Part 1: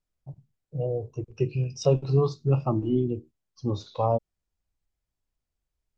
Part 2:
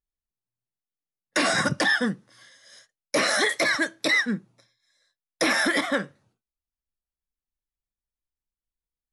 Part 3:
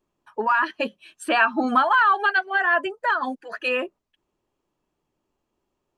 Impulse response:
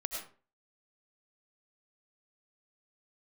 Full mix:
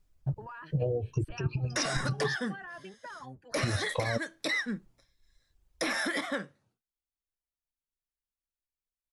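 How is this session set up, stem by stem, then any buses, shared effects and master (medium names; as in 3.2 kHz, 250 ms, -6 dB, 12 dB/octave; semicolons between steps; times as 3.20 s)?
+3.0 dB, 0.00 s, muted 2.36–3.54 s, no send, reverb removal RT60 1 s; bass shelf 120 Hz +11 dB; compressor with a negative ratio -26 dBFS, ratio -0.5
-7.5 dB, 0.40 s, no send, none
-15.5 dB, 0.00 s, no send, octave divider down 1 oct, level +3 dB; peak limiter -16.5 dBFS, peak gain reduction 9.5 dB; compression, threshold -26 dBFS, peak gain reduction 6 dB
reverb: none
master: compression 10:1, threshold -26 dBFS, peak gain reduction 10 dB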